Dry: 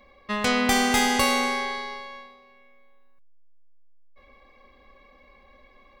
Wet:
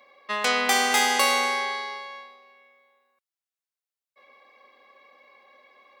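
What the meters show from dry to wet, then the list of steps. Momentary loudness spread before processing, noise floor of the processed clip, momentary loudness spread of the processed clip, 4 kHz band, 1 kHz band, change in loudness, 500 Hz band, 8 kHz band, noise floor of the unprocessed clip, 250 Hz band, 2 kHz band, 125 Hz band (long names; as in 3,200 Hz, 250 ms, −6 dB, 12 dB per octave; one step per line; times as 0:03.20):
16 LU, below −85 dBFS, 15 LU, +1.5 dB, +1.0 dB, +0.5 dB, −1.5 dB, +1.5 dB, −56 dBFS, −11.0 dB, +1.5 dB, below −15 dB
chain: high-pass filter 500 Hz 12 dB per octave
level +1.5 dB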